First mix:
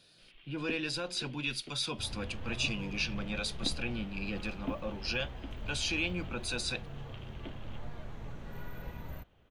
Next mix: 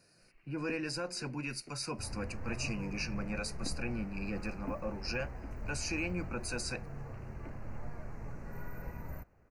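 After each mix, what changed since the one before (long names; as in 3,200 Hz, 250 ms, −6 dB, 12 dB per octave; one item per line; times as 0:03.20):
first sound −4.5 dB
master: add Butterworth band-reject 3,400 Hz, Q 1.4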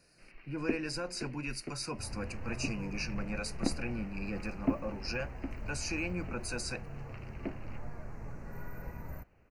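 first sound +12.0 dB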